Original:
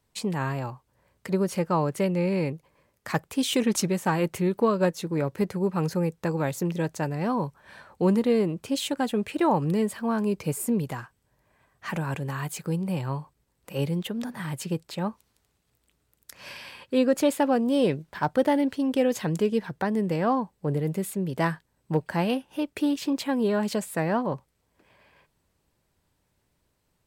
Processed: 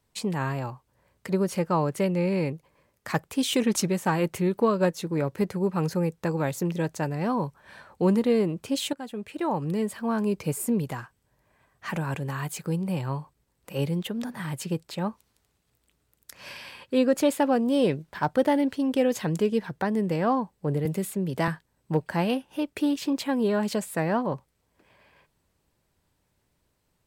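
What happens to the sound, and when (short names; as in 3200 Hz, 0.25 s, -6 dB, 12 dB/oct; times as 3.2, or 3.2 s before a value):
8.93–10.21 fade in, from -13 dB
20.85–21.48 three-band squash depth 40%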